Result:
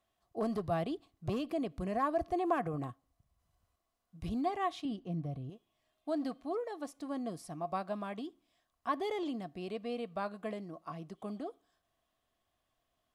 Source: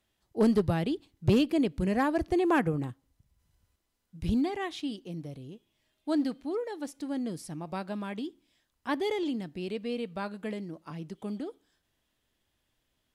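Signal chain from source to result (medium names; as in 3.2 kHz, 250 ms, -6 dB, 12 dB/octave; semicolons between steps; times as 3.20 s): 4.85–5.50 s: tone controls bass +11 dB, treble -8 dB; peak limiter -23.5 dBFS, peak gain reduction 6.5 dB; small resonant body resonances 700/1100 Hz, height 16 dB, ringing for 35 ms; trim -6.5 dB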